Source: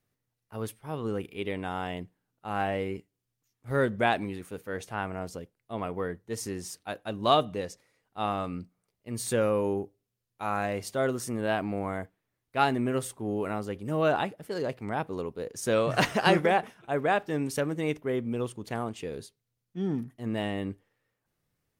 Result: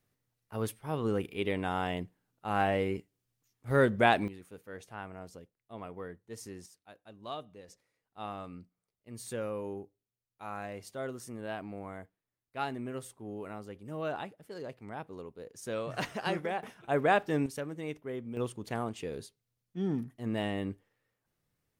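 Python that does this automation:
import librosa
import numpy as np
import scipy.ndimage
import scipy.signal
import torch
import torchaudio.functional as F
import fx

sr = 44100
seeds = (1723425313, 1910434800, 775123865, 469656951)

y = fx.gain(x, sr, db=fx.steps((0.0, 1.0), (4.28, -10.0), (6.66, -18.0), (7.68, -10.5), (16.63, 0.0), (17.46, -9.0), (18.37, -2.0)))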